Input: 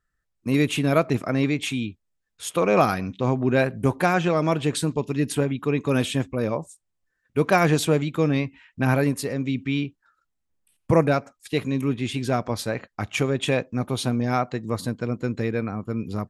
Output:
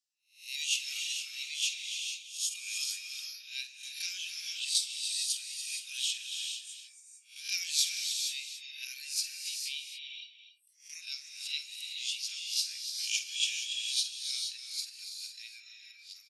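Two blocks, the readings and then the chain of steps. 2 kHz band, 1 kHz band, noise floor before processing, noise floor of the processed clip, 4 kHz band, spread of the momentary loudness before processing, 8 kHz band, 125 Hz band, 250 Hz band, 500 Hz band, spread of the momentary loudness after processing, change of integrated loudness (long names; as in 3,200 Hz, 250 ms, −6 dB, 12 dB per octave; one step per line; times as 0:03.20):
−11.0 dB, below −40 dB, −77 dBFS, −60 dBFS, +3.5 dB, 9 LU, +3.5 dB, below −40 dB, below −40 dB, below −40 dB, 14 LU, −9.5 dB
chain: peak hold with a rise ahead of every peak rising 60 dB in 0.40 s
reverb reduction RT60 1.8 s
elliptic high-pass filter 2,700 Hz, stop band 70 dB
parametric band 5,200 Hz +11.5 dB 0.97 octaves
multi-tap delay 47/284 ms −11/−11 dB
reverb whose tail is shaped and stops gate 490 ms rising, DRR 3.5 dB
every ending faded ahead of time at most 190 dB per second
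level −6 dB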